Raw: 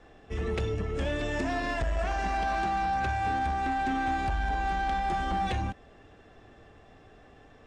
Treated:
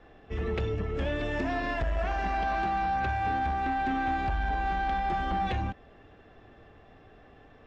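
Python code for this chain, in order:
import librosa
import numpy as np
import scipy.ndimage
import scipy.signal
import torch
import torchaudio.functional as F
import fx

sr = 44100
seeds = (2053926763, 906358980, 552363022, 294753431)

y = scipy.signal.sosfilt(scipy.signal.butter(2, 3900.0, 'lowpass', fs=sr, output='sos'), x)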